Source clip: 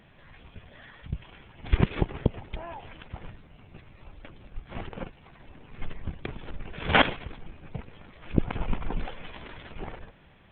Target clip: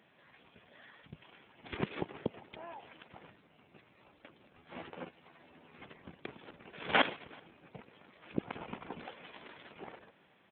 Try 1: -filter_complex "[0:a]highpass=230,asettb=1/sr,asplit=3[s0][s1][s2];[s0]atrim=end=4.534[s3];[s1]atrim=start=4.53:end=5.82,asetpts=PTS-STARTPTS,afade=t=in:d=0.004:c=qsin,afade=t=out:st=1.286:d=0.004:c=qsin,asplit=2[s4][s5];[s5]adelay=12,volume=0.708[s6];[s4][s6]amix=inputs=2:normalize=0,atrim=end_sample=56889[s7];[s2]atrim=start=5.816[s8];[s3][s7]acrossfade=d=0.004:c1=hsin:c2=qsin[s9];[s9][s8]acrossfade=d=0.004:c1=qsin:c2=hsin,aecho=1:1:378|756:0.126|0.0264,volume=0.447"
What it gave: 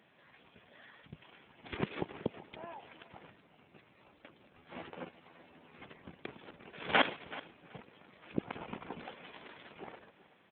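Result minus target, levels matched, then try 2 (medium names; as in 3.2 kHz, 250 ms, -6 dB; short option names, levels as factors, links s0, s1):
echo-to-direct +11.5 dB
-filter_complex "[0:a]highpass=230,asettb=1/sr,asplit=3[s0][s1][s2];[s0]atrim=end=4.534[s3];[s1]atrim=start=4.53:end=5.82,asetpts=PTS-STARTPTS,afade=t=in:d=0.004:c=qsin,afade=t=out:st=1.286:d=0.004:c=qsin,asplit=2[s4][s5];[s5]adelay=12,volume=0.708[s6];[s4][s6]amix=inputs=2:normalize=0,atrim=end_sample=56889[s7];[s2]atrim=start=5.816[s8];[s3][s7]acrossfade=d=0.004:c1=hsin:c2=qsin[s9];[s9][s8]acrossfade=d=0.004:c1=qsin:c2=hsin,aecho=1:1:378:0.0335,volume=0.447"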